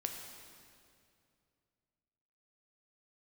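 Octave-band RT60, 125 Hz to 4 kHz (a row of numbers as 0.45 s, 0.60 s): 3.2 s, 2.7 s, 2.6 s, 2.3 s, 2.1 s, 2.0 s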